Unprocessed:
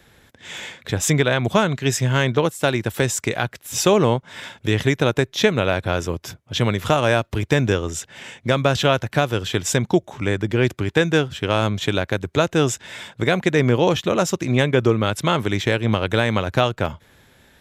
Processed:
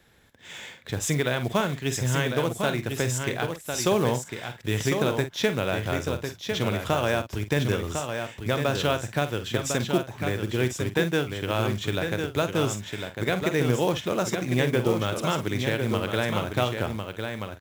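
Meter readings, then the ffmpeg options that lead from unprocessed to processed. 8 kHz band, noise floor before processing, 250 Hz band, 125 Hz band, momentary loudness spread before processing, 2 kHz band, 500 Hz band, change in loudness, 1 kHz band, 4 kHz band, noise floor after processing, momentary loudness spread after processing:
-6.0 dB, -57 dBFS, -6.0 dB, -6.0 dB, 9 LU, -6.0 dB, -6.0 dB, -6.5 dB, -6.0 dB, -6.0 dB, -47 dBFS, 7 LU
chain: -filter_complex "[0:a]asplit=2[s0][s1];[s1]adelay=48,volume=0.282[s2];[s0][s2]amix=inputs=2:normalize=0,asplit=2[s3][s4];[s4]aecho=0:1:1052:0.501[s5];[s3][s5]amix=inputs=2:normalize=0,acrusher=bits=5:mode=log:mix=0:aa=0.000001,volume=0.422"

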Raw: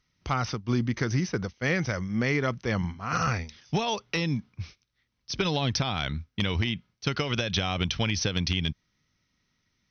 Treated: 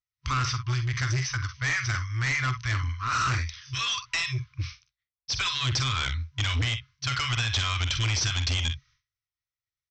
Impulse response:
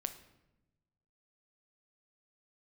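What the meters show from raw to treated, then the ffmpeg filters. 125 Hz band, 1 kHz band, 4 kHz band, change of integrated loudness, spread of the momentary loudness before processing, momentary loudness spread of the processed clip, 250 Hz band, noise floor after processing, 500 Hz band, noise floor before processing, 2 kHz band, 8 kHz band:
+2.0 dB, +1.0 dB, +3.0 dB, +1.0 dB, 6 LU, 6 LU, -12.0 dB, under -85 dBFS, -14.5 dB, -77 dBFS, +3.0 dB, no reading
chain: -af "afftfilt=real='re*(1-between(b*sr/4096,130,1000))':imag='im*(1-between(b*sr/4096,130,1000))':win_size=4096:overlap=0.75,agate=range=0.0224:threshold=0.00141:ratio=3:detection=peak,lowshelf=f=64:g=-2.5,aecho=1:1:46|61:0.266|0.178,aresample=16000,asoftclip=type=tanh:threshold=0.0299,aresample=44100,volume=2.51"

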